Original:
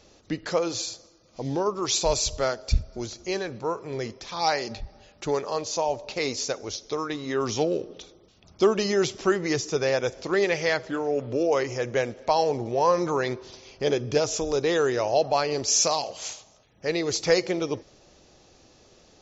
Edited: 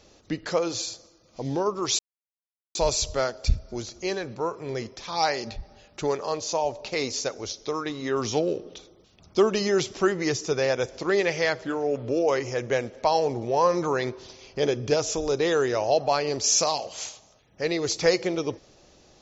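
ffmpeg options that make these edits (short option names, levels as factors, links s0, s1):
-filter_complex "[0:a]asplit=2[s0][s1];[s0]atrim=end=1.99,asetpts=PTS-STARTPTS,afade=t=out:st=1.986:d=0.004:c=hsin,apad=pad_dur=0.76[s2];[s1]atrim=start=1.99,asetpts=PTS-STARTPTS,afade=t=in:d=0.004:c=hsin[s3];[s2][s3]concat=n=2:v=0:a=1"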